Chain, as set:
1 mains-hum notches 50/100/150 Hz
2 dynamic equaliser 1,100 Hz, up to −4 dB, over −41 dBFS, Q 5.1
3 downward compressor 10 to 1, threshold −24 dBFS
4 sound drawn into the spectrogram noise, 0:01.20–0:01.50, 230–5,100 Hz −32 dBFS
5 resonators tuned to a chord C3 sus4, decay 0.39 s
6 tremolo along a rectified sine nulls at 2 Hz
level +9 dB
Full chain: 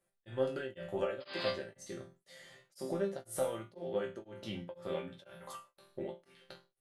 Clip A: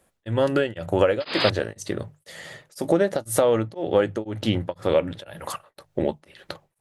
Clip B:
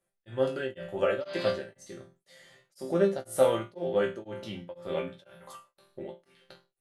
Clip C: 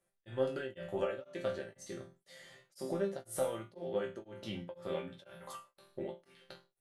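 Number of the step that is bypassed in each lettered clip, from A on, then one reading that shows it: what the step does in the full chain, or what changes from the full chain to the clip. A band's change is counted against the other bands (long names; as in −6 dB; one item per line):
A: 5, 125 Hz band +3.0 dB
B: 3, average gain reduction 5.0 dB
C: 4, 4 kHz band −4.0 dB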